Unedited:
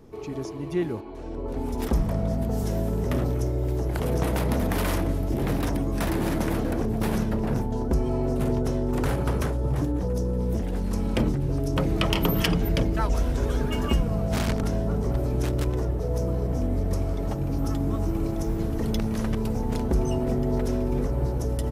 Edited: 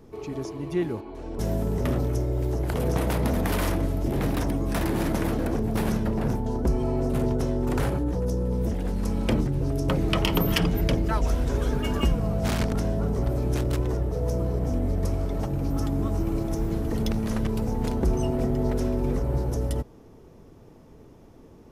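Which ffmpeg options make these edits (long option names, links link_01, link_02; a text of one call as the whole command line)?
ffmpeg -i in.wav -filter_complex "[0:a]asplit=3[link_01][link_02][link_03];[link_01]atrim=end=1.392[link_04];[link_02]atrim=start=2.648:end=9.252[link_05];[link_03]atrim=start=9.868[link_06];[link_04][link_05]acrossfade=duration=0.004:curve1=hsin:curve2=hsin[link_07];[link_07][link_06]acrossfade=duration=0.004:curve1=hsin:curve2=hsin" out.wav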